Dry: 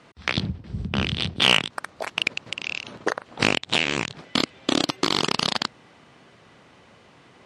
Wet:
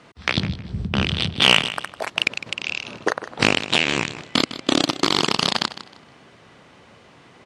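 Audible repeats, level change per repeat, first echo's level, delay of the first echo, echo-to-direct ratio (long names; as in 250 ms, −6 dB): 2, −13.0 dB, −14.0 dB, 156 ms, −13.5 dB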